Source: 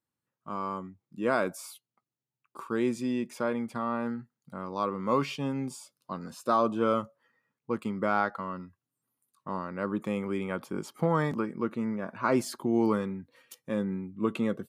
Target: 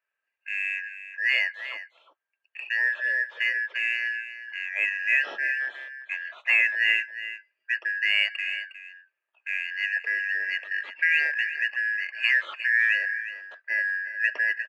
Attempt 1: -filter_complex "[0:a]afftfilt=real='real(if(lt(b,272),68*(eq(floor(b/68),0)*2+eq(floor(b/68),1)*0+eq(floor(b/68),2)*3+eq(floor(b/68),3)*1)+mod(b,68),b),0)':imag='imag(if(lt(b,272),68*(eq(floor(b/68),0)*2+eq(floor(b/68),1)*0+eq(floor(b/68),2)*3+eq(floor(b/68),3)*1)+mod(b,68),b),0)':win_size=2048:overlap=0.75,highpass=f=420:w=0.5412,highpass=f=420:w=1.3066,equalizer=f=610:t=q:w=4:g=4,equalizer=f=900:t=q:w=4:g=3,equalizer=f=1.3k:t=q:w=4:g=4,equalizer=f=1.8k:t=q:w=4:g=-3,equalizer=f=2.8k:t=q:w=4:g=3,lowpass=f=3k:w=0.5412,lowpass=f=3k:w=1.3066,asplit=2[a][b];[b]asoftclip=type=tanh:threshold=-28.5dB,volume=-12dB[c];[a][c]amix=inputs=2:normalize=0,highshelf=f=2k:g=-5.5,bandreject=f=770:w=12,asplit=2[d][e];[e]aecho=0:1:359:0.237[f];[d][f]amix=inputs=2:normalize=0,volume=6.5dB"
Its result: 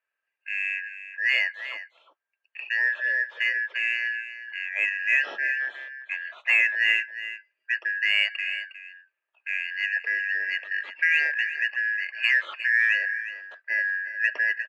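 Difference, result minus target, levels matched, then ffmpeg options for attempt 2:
soft clip: distortion -4 dB
-filter_complex "[0:a]afftfilt=real='real(if(lt(b,272),68*(eq(floor(b/68),0)*2+eq(floor(b/68),1)*0+eq(floor(b/68),2)*3+eq(floor(b/68),3)*1)+mod(b,68),b),0)':imag='imag(if(lt(b,272),68*(eq(floor(b/68),0)*2+eq(floor(b/68),1)*0+eq(floor(b/68),2)*3+eq(floor(b/68),3)*1)+mod(b,68),b),0)':win_size=2048:overlap=0.75,highpass=f=420:w=0.5412,highpass=f=420:w=1.3066,equalizer=f=610:t=q:w=4:g=4,equalizer=f=900:t=q:w=4:g=3,equalizer=f=1.3k:t=q:w=4:g=4,equalizer=f=1.8k:t=q:w=4:g=-3,equalizer=f=2.8k:t=q:w=4:g=3,lowpass=f=3k:w=0.5412,lowpass=f=3k:w=1.3066,asplit=2[a][b];[b]asoftclip=type=tanh:threshold=-36.5dB,volume=-12dB[c];[a][c]amix=inputs=2:normalize=0,highshelf=f=2k:g=-5.5,bandreject=f=770:w=12,asplit=2[d][e];[e]aecho=0:1:359:0.237[f];[d][f]amix=inputs=2:normalize=0,volume=6.5dB"

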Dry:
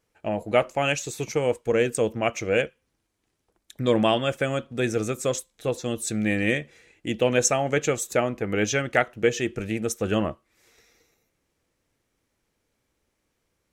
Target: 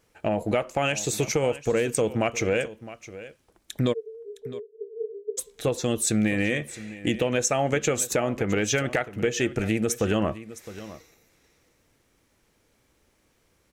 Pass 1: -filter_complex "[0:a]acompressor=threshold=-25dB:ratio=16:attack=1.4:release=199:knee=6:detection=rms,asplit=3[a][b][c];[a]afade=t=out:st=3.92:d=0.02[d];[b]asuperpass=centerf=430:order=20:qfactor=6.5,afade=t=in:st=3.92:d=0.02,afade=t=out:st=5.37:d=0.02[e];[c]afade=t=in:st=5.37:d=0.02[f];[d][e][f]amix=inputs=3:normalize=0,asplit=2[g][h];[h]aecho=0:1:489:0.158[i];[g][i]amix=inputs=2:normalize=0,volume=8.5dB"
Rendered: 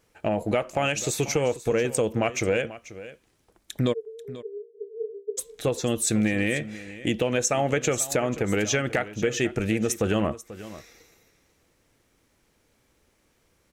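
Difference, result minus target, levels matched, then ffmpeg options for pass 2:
echo 0.173 s early
-filter_complex "[0:a]acompressor=threshold=-25dB:ratio=16:attack=1.4:release=199:knee=6:detection=rms,asplit=3[a][b][c];[a]afade=t=out:st=3.92:d=0.02[d];[b]asuperpass=centerf=430:order=20:qfactor=6.5,afade=t=in:st=3.92:d=0.02,afade=t=out:st=5.37:d=0.02[e];[c]afade=t=in:st=5.37:d=0.02[f];[d][e][f]amix=inputs=3:normalize=0,asplit=2[g][h];[h]aecho=0:1:662:0.158[i];[g][i]amix=inputs=2:normalize=0,volume=8.5dB"

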